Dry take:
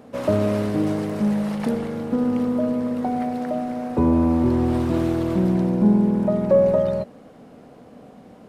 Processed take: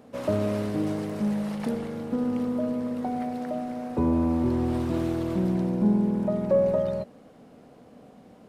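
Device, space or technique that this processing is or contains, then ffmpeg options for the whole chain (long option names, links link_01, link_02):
exciter from parts: -filter_complex "[0:a]asplit=2[link_01][link_02];[link_02]highpass=2000,asoftclip=type=tanh:threshold=-38dB,volume=-12dB[link_03];[link_01][link_03]amix=inputs=2:normalize=0,volume=-5.5dB"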